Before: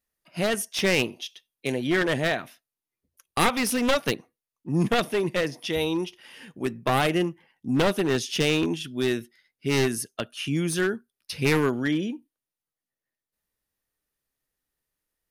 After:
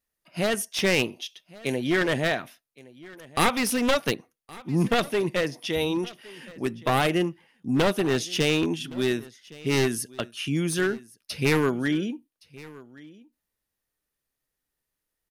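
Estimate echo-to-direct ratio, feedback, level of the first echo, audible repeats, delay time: -21.5 dB, no steady repeat, -21.5 dB, 1, 1.117 s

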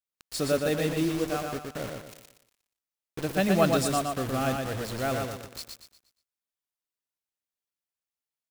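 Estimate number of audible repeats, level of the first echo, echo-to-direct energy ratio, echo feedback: 4, -4.0 dB, -3.5 dB, 37%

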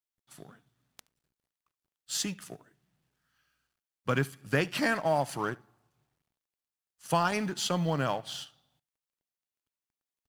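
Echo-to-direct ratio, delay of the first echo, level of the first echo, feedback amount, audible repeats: -23.5 dB, 73 ms, -23.5 dB, no steady repeat, 1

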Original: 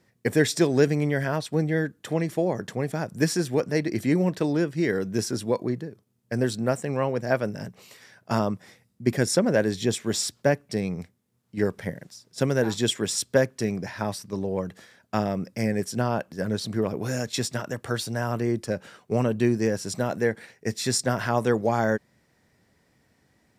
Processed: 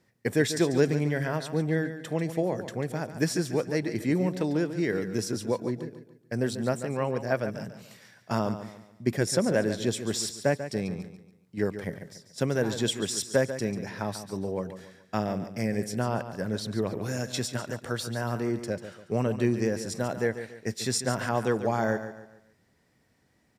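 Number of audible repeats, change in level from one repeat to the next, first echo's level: 3, -8.5 dB, -11.0 dB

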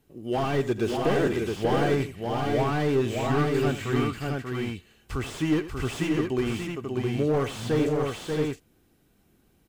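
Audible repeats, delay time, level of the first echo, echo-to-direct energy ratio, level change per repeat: 3, 85 ms, -14.0 dB, -1.0 dB, no steady repeat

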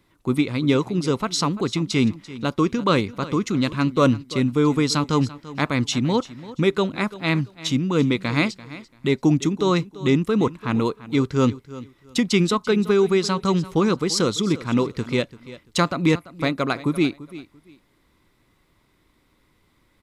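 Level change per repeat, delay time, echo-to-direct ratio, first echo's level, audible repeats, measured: -13.0 dB, 0.34 s, -17.0 dB, -17.0 dB, 2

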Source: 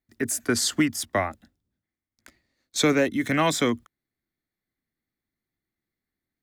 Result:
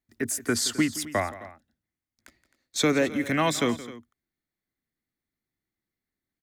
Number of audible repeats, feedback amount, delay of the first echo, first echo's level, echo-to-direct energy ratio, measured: 2, no steady repeat, 0.172 s, -17.0 dB, -14.5 dB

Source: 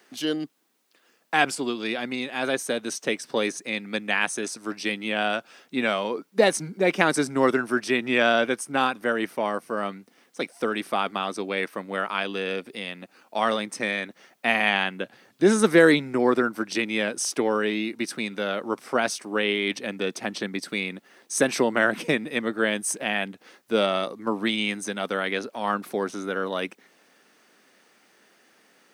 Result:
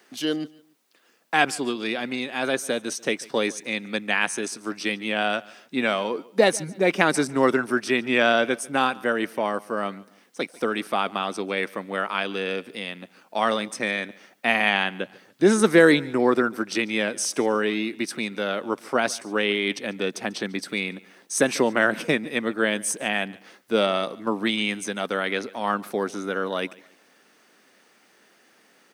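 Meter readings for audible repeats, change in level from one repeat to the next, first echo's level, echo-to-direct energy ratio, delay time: 2, -9.5 dB, -22.5 dB, -22.0 dB, 0.144 s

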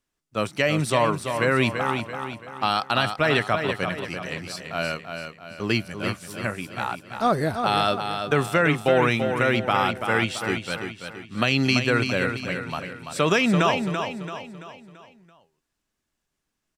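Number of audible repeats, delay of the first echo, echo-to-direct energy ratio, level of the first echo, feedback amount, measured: 5, 0.336 s, -6.0 dB, -7.0 dB, 45%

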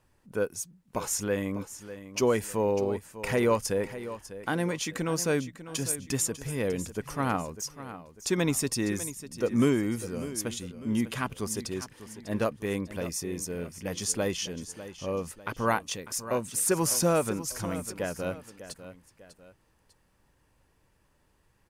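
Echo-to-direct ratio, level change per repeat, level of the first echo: -13.0 dB, -7.5 dB, -13.5 dB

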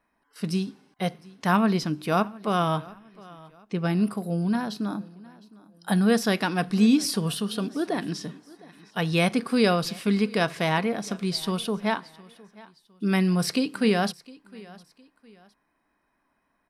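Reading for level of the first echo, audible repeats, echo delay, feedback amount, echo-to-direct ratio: -22.0 dB, 2, 0.71 s, 35%, -21.5 dB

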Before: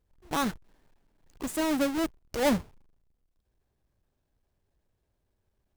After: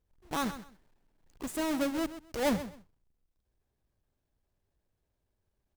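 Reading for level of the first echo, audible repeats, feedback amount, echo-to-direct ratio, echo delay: -13.0 dB, 2, 20%, -13.0 dB, 0.129 s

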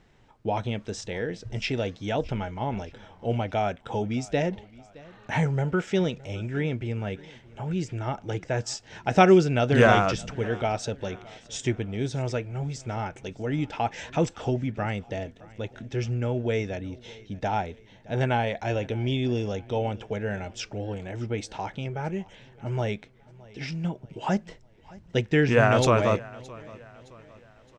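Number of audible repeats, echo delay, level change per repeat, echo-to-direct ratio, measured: 2, 0.617 s, -7.0 dB, -21.0 dB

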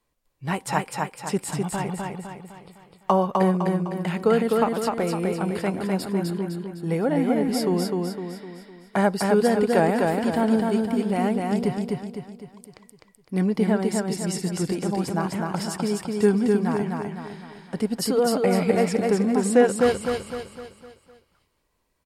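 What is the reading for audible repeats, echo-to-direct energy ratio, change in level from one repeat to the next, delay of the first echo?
5, -2.0 dB, -6.5 dB, 0.254 s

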